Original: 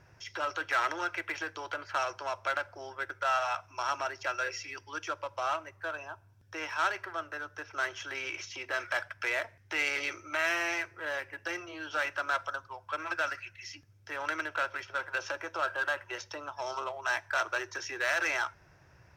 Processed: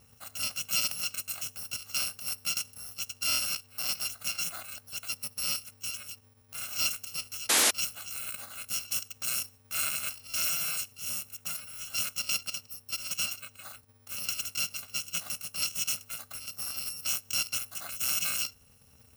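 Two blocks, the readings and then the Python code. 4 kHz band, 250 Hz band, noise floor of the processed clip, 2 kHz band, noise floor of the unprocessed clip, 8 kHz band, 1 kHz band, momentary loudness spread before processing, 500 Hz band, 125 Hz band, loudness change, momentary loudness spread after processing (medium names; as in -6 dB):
+9.5 dB, -5.0 dB, -61 dBFS, -7.0 dB, -61 dBFS, +16.5 dB, -11.5 dB, 10 LU, -12.5 dB, +3.0 dB, +2.5 dB, 11 LU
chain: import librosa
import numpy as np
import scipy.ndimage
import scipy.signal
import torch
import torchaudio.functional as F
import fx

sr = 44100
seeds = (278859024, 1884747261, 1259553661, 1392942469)

y = fx.bit_reversed(x, sr, seeds[0], block=128)
y = fx.spec_paint(y, sr, seeds[1], shape='noise', start_s=7.49, length_s=0.22, low_hz=210.0, high_hz=12000.0, level_db=-23.0)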